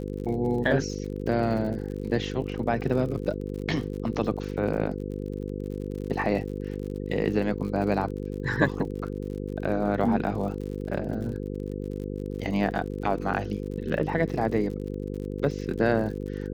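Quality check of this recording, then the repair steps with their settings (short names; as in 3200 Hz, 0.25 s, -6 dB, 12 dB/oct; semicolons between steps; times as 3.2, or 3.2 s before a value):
buzz 50 Hz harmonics 10 -33 dBFS
crackle 57/s -36 dBFS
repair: de-click; de-hum 50 Hz, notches 10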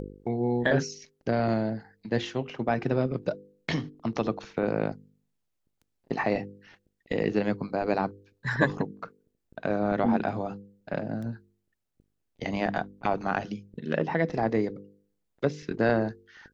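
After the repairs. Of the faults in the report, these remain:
none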